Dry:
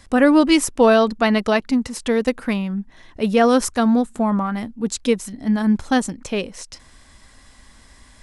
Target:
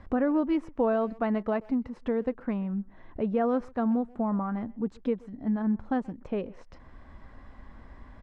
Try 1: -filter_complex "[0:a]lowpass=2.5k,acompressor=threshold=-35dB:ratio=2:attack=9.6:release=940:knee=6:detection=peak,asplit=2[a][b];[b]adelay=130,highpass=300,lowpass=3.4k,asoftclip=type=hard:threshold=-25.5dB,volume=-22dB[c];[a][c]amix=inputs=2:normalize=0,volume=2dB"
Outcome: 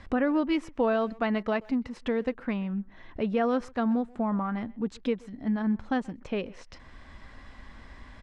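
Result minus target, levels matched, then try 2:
2000 Hz band +6.0 dB
-filter_complex "[0:a]lowpass=1.2k,acompressor=threshold=-35dB:ratio=2:attack=9.6:release=940:knee=6:detection=peak,asplit=2[a][b];[b]adelay=130,highpass=300,lowpass=3.4k,asoftclip=type=hard:threshold=-25.5dB,volume=-22dB[c];[a][c]amix=inputs=2:normalize=0,volume=2dB"

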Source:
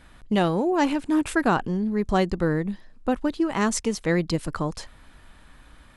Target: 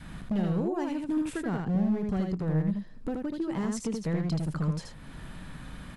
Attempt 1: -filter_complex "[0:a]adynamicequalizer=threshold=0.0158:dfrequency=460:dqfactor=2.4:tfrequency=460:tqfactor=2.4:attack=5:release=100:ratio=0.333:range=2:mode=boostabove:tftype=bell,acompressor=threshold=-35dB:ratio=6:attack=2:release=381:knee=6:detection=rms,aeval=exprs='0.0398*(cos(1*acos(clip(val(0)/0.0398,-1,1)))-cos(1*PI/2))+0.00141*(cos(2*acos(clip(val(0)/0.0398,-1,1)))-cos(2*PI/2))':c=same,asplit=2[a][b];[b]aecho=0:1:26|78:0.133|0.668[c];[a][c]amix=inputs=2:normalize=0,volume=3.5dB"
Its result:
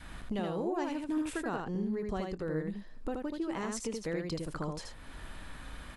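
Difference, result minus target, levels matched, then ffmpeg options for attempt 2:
125 Hz band -5.5 dB
-filter_complex "[0:a]adynamicequalizer=threshold=0.0158:dfrequency=460:dqfactor=2.4:tfrequency=460:tqfactor=2.4:attack=5:release=100:ratio=0.333:range=2:mode=boostabove:tftype=bell,acompressor=threshold=-35dB:ratio=6:attack=2:release=381:knee=6:detection=rms,equalizer=f=160:t=o:w=1.2:g=13.5,aeval=exprs='0.0398*(cos(1*acos(clip(val(0)/0.0398,-1,1)))-cos(1*PI/2))+0.00141*(cos(2*acos(clip(val(0)/0.0398,-1,1)))-cos(2*PI/2))':c=same,asplit=2[a][b];[b]aecho=0:1:26|78:0.133|0.668[c];[a][c]amix=inputs=2:normalize=0,volume=3.5dB"

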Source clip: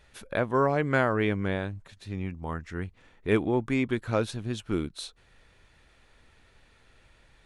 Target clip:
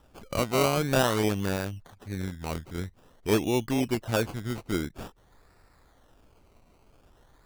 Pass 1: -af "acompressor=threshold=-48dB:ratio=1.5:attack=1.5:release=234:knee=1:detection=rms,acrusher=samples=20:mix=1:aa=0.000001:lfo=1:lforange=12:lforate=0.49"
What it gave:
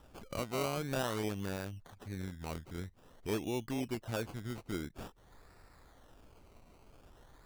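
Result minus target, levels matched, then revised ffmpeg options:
compressor: peak gain reduction +12 dB
-af "acrusher=samples=20:mix=1:aa=0.000001:lfo=1:lforange=12:lforate=0.49"

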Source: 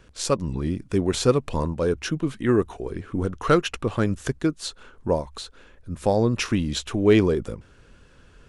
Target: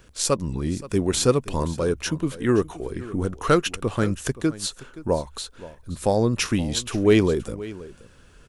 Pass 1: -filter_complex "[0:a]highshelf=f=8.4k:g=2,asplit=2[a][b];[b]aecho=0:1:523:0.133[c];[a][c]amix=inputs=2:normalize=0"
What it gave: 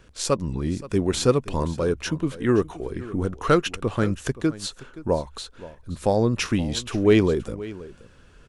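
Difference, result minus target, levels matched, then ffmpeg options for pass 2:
8000 Hz band -4.5 dB
-filter_complex "[0:a]highshelf=f=8.4k:g=13.5,asplit=2[a][b];[b]aecho=0:1:523:0.133[c];[a][c]amix=inputs=2:normalize=0"

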